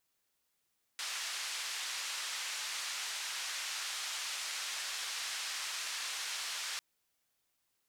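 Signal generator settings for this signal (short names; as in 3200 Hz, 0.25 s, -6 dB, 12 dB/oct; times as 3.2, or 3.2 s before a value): noise band 1200–6300 Hz, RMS -39.5 dBFS 5.80 s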